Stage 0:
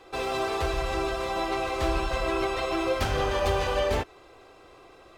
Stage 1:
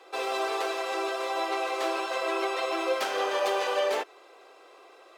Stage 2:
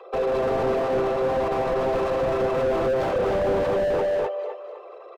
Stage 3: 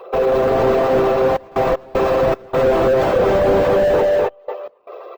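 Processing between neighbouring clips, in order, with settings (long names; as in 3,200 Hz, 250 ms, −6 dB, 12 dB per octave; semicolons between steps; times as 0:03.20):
high-pass filter 380 Hz 24 dB per octave
spectral envelope exaggerated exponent 2; repeating echo 254 ms, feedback 36%, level −4 dB; slew-rate limiting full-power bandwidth 18 Hz; level +9 dB
gate pattern "xxxxxxx.x.xx.xx" 77 BPM −24 dB; bad sample-rate conversion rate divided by 2×, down filtered, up hold; level +8 dB; Opus 20 kbit/s 48,000 Hz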